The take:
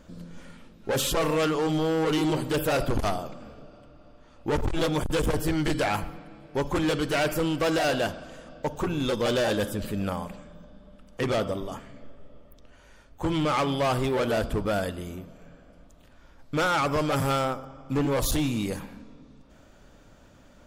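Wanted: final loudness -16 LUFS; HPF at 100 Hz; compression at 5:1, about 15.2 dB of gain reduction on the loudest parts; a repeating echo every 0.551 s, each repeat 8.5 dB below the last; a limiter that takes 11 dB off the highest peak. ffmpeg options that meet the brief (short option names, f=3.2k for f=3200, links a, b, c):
-af "highpass=100,acompressor=threshold=-40dB:ratio=5,alimiter=level_in=12.5dB:limit=-24dB:level=0:latency=1,volume=-12.5dB,aecho=1:1:551|1102|1653|2204:0.376|0.143|0.0543|0.0206,volume=29.5dB"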